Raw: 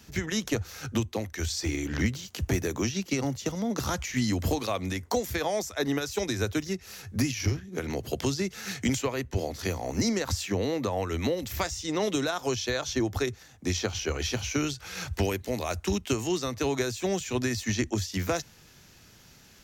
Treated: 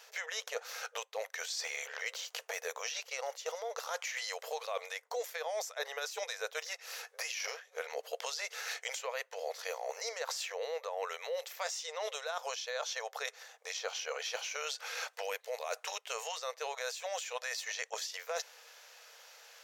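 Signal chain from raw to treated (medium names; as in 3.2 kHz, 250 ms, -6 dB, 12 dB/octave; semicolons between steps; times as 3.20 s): brick-wall FIR high-pass 440 Hz; treble shelf 4.7 kHz -6 dB; reverse; compression 6:1, threshold -38 dBFS, peak gain reduction 14 dB; reverse; trim +3 dB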